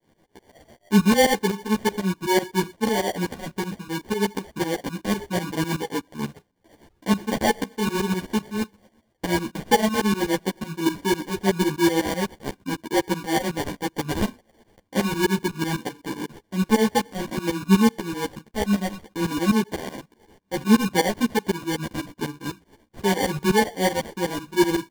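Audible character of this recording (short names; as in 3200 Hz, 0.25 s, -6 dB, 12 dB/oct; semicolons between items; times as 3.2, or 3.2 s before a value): aliases and images of a low sample rate 1300 Hz, jitter 0%; tremolo saw up 8 Hz, depth 95%; a shimmering, thickened sound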